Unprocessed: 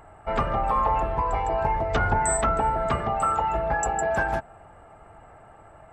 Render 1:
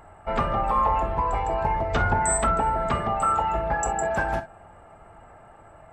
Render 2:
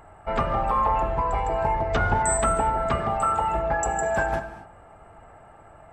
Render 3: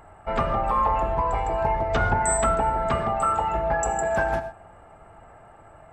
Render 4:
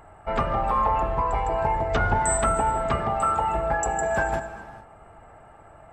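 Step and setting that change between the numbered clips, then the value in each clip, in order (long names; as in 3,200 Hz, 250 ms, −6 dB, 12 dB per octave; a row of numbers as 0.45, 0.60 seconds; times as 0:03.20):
reverb whose tail is shaped and stops, gate: 80, 280, 150, 470 milliseconds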